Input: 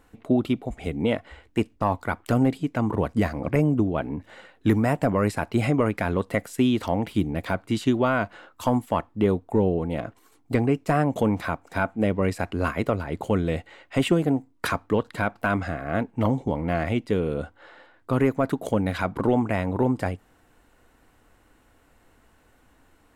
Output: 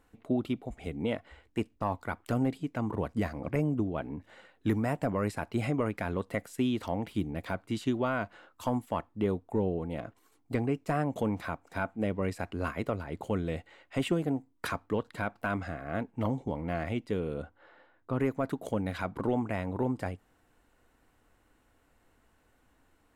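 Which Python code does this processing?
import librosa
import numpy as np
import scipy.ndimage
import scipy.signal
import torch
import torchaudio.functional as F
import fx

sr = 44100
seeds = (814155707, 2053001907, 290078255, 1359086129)

y = fx.lowpass(x, sr, hz=2300.0, slope=6, at=(17.42, 18.2))
y = y * librosa.db_to_amplitude(-8.0)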